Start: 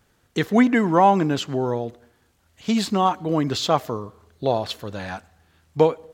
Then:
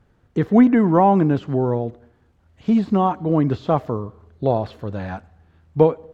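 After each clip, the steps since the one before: de-esser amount 90%; LPF 1100 Hz 6 dB/oct; low shelf 180 Hz +6 dB; gain +2.5 dB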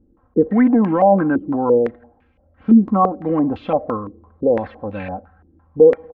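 limiter -10 dBFS, peak gain reduction 8.5 dB; comb 3.8 ms, depth 70%; stepped low-pass 5.9 Hz 340–2500 Hz; gain -1.5 dB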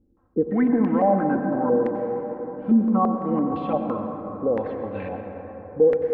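plate-style reverb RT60 4.6 s, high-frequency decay 0.3×, pre-delay 80 ms, DRR 4 dB; gain -7 dB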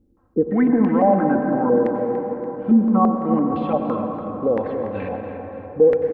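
feedback echo 0.288 s, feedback 46%, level -11.5 dB; gain +3 dB

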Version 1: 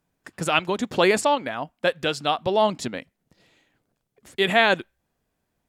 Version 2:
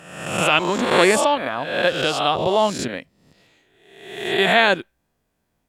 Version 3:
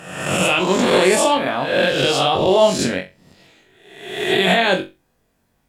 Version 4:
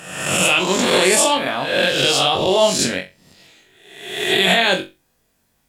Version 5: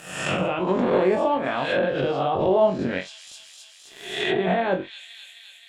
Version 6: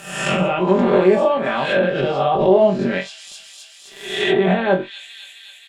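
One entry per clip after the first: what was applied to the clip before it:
spectral swells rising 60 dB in 0.91 s; gain +1 dB
dynamic EQ 1300 Hz, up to -5 dB, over -30 dBFS, Q 0.97; limiter -12 dBFS, peak gain reduction 8 dB; on a send: flutter echo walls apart 3.7 m, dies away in 0.25 s; on the sum: gain +5 dB
high shelf 2400 Hz +9.5 dB; gain -2.5 dB
crossover distortion -43.5 dBFS; thin delay 0.262 s, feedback 72%, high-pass 2800 Hz, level -19 dB; treble ducked by the level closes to 1000 Hz, closed at -14 dBFS; gain -2 dB
comb 5.1 ms, depth 71%; gain +3.5 dB

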